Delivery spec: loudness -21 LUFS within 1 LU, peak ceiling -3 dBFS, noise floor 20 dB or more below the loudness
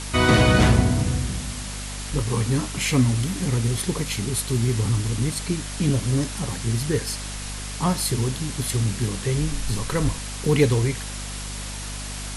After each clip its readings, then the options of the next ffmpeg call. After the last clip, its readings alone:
hum 50 Hz; harmonics up to 250 Hz; hum level -32 dBFS; noise floor -32 dBFS; noise floor target -44 dBFS; loudness -23.5 LUFS; peak -4.0 dBFS; loudness target -21.0 LUFS
-> -af "bandreject=f=50:t=h:w=4,bandreject=f=100:t=h:w=4,bandreject=f=150:t=h:w=4,bandreject=f=200:t=h:w=4,bandreject=f=250:t=h:w=4"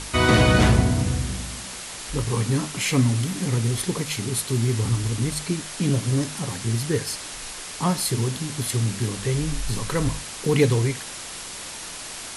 hum none; noise floor -36 dBFS; noise floor target -44 dBFS
-> -af "afftdn=nr=8:nf=-36"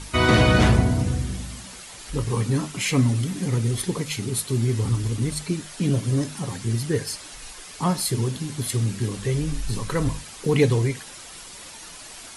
noise floor -41 dBFS; noise floor target -44 dBFS
-> -af "afftdn=nr=6:nf=-41"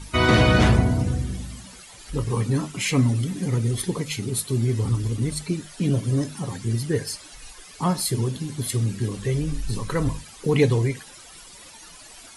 noise floor -45 dBFS; loudness -24.0 LUFS; peak -4.5 dBFS; loudness target -21.0 LUFS
-> -af "volume=3dB,alimiter=limit=-3dB:level=0:latency=1"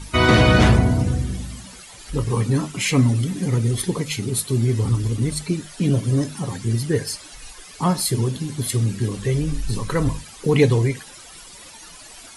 loudness -21.0 LUFS; peak -3.0 dBFS; noise floor -42 dBFS

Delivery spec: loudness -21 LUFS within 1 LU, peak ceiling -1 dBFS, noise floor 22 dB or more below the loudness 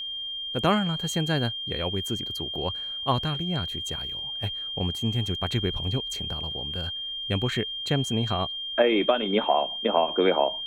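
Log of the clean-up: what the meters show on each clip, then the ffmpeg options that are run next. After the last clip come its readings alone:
steady tone 3200 Hz; tone level -31 dBFS; loudness -26.5 LUFS; peak -8.5 dBFS; loudness target -21.0 LUFS
-> -af "bandreject=f=3.2k:w=30"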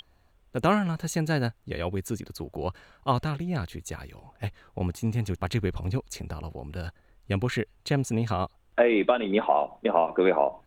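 steady tone none; loudness -28.0 LUFS; peak -9.0 dBFS; loudness target -21.0 LUFS
-> -af "volume=7dB"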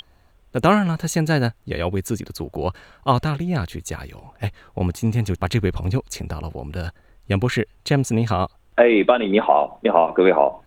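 loudness -21.0 LUFS; peak -2.0 dBFS; noise floor -55 dBFS

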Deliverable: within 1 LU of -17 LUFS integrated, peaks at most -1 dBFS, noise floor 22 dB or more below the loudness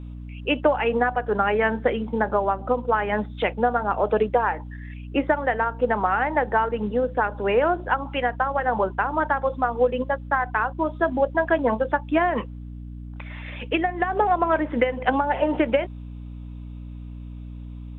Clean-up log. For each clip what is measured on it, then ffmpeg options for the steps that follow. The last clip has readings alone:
hum 60 Hz; harmonics up to 300 Hz; hum level -34 dBFS; loudness -23.5 LUFS; peak -8.0 dBFS; loudness target -17.0 LUFS
-> -af "bandreject=f=60:t=h:w=4,bandreject=f=120:t=h:w=4,bandreject=f=180:t=h:w=4,bandreject=f=240:t=h:w=4,bandreject=f=300:t=h:w=4"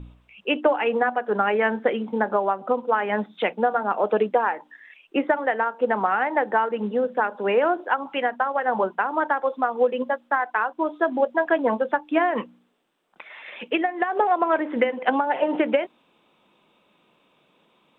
hum none; loudness -23.5 LUFS; peak -8.0 dBFS; loudness target -17.0 LUFS
-> -af "volume=6.5dB"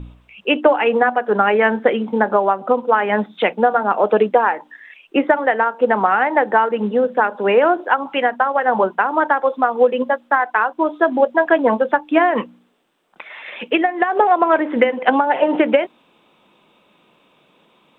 loudness -17.0 LUFS; peak -1.5 dBFS; noise floor -57 dBFS

